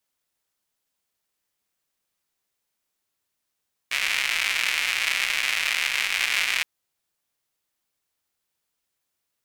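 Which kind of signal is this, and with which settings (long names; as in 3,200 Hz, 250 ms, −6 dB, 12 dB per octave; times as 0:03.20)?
rain-like ticks over hiss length 2.72 s, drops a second 230, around 2,300 Hz, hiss −29.5 dB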